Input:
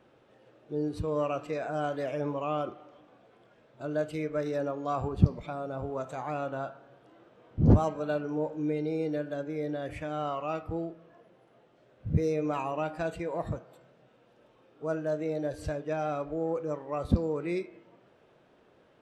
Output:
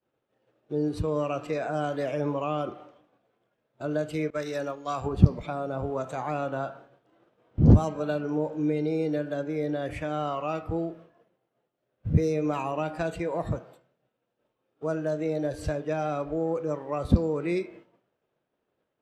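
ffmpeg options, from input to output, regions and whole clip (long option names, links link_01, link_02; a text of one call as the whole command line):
ffmpeg -i in.wav -filter_complex "[0:a]asettb=1/sr,asplit=3[link_01][link_02][link_03];[link_01]atrim=end=4.304[link_04];[link_02]atrim=start=4.3:end=5.06,asetpts=PTS-STARTPTS,afade=type=in:duration=0.004:curve=qsin,afade=type=out:start_time=0.756:duration=0.004:curve=qsin,agate=range=-33dB:threshold=-32dB:ratio=3:release=100:detection=peak,tiltshelf=frequency=1300:gain=-6[link_05];[link_03]atrim=start=5.056[link_06];[link_04][link_05]acrossfade=duration=0.004:curve1=hsin:curve2=qsin[link_07];[link_07][link_06]acrossfade=duration=0.004:curve1=qsin:curve2=hsin,agate=range=-33dB:threshold=-48dB:ratio=3:detection=peak,acrossover=split=310|3000[link_08][link_09][link_10];[link_09]acompressor=threshold=-31dB:ratio=6[link_11];[link_08][link_11][link_10]amix=inputs=3:normalize=0,volume=4.5dB" out.wav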